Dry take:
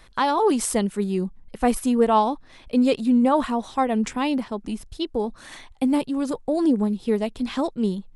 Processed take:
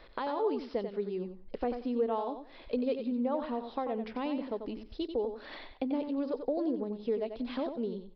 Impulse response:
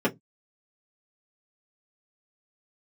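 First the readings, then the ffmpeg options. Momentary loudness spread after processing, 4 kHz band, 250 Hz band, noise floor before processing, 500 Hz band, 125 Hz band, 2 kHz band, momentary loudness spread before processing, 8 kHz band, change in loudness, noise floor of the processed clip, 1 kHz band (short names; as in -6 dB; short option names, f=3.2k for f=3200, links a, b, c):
7 LU, -13.5 dB, -13.0 dB, -49 dBFS, -8.0 dB, n/a, -14.0 dB, 11 LU, under -40 dB, -11.5 dB, -53 dBFS, -14.5 dB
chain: -filter_complex "[0:a]equalizer=f=270:t=o:w=1.4:g=-3,acompressor=threshold=-37dB:ratio=3,aresample=11025,aresample=44100,equalizer=f=125:t=o:w=1:g=-8,equalizer=f=250:t=o:w=1:g=5,equalizer=f=500:t=o:w=1:g=10,aecho=1:1:91|182|273:0.398|0.0756|0.0144,asplit=2[a][b];[1:a]atrim=start_sample=2205[c];[b][c]afir=irnorm=-1:irlink=0,volume=-34.5dB[d];[a][d]amix=inputs=2:normalize=0,volume=-4.5dB"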